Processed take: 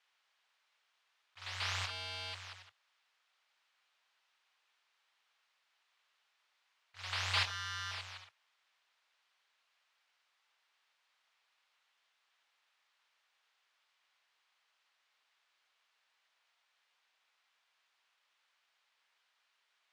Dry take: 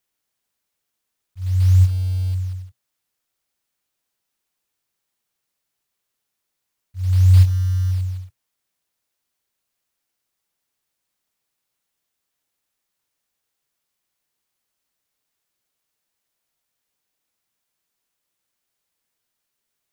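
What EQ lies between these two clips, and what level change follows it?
flat-topped band-pass 1,800 Hz, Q 0.6
+8.5 dB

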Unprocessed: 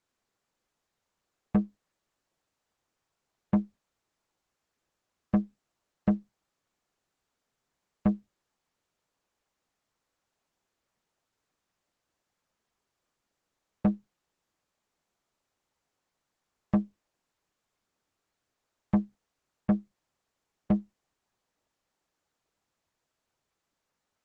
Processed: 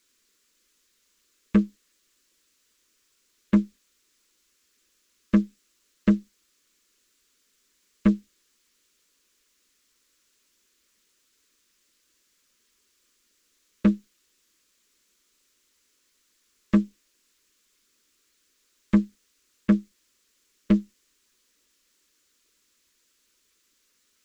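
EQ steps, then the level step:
high-shelf EQ 2,300 Hz +10.5 dB
phaser with its sweep stopped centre 310 Hz, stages 4
+9.0 dB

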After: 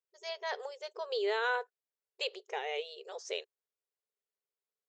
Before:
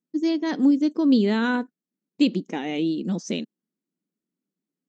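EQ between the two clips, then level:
linear-phase brick-wall high-pass 390 Hz
high-shelf EQ 5,700 Hz −5 dB
notch filter 6,000 Hz, Q 27
−4.0 dB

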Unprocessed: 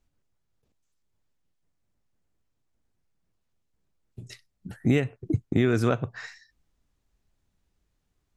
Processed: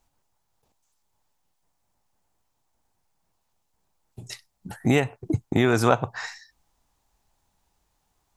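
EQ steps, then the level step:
parametric band 860 Hz +15 dB 0.92 octaves
high-shelf EQ 3,300 Hz +11.5 dB
0.0 dB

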